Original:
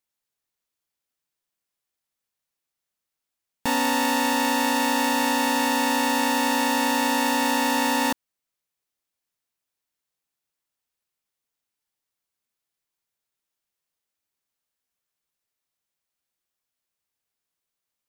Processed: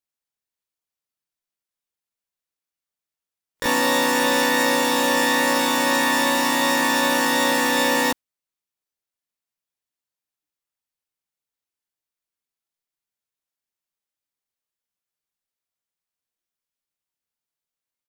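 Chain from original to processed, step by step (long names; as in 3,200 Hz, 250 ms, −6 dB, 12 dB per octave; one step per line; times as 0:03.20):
pitch-shifted copies added −7 semitones −16 dB, +4 semitones −9 dB, +12 semitones −1 dB
noise reduction from a noise print of the clip's start 7 dB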